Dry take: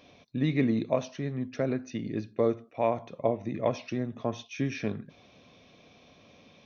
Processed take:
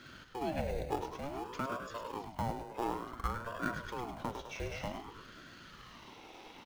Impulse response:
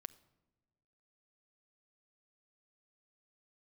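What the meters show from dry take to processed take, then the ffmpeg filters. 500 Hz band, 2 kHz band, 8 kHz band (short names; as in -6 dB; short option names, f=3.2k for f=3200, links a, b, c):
-10.5 dB, -2.0 dB, n/a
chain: -filter_complex "[0:a]highpass=150,asplit=2[a][b];[b]acrusher=samples=21:mix=1:aa=0.000001,volume=-6.5dB[c];[a][c]amix=inputs=2:normalize=0,acrossover=split=230[d][e];[e]acompressor=threshold=-47dB:ratio=2.5[f];[d][f]amix=inputs=2:normalize=0,lowshelf=f=420:t=q:w=1.5:g=-9,asplit=7[g][h][i][j][k][l][m];[h]adelay=103,afreqshift=62,volume=-7dB[n];[i]adelay=206,afreqshift=124,volume=-12.5dB[o];[j]adelay=309,afreqshift=186,volume=-18dB[p];[k]adelay=412,afreqshift=248,volume=-23.5dB[q];[l]adelay=515,afreqshift=310,volume=-29.1dB[r];[m]adelay=618,afreqshift=372,volume=-34.6dB[s];[g][n][o][p][q][r][s]amix=inputs=7:normalize=0,aeval=exprs='val(0)*sin(2*PI*530*n/s+530*0.6/0.55*sin(2*PI*0.55*n/s))':c=same,volume=5.5dB"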